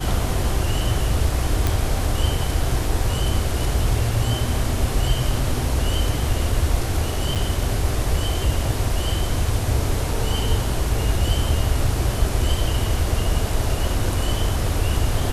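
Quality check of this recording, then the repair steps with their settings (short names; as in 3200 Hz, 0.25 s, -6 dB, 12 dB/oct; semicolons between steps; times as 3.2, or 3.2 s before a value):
1.67 pop
7.35–7.36 gap 7.4 ms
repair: de-click; interpolate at 7.35, 7.4 ms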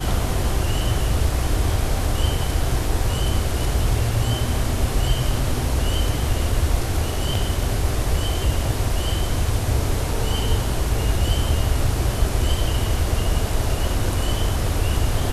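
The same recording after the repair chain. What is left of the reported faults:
none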